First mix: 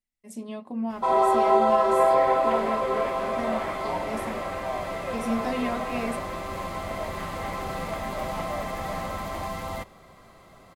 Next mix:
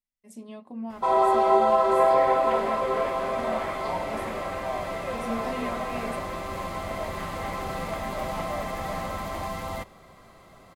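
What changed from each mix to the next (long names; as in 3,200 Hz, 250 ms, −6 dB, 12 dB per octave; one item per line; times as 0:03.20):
speech −5.5 dB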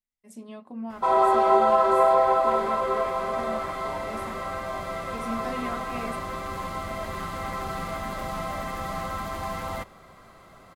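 second sound −8.5 dB
master: add parametric band 1,400 Hz +5.5 dB 0.51 octaves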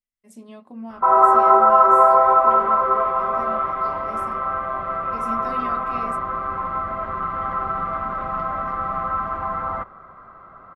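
first sound: add low-pass with resonance 1,300 Hz, resonance Q 4.2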